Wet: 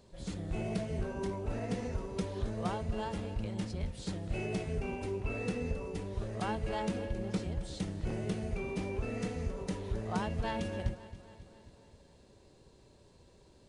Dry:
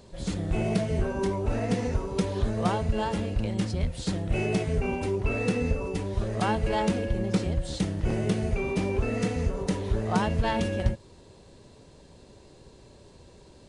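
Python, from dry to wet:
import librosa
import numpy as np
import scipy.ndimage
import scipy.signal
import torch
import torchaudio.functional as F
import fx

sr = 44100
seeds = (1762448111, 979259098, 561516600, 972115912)

y = fx.echo_feedback(x, sr, ms=269, feedback_pct=60, wet_db=-16)
y = y * 10.0 ** (-9.0 / 20.0)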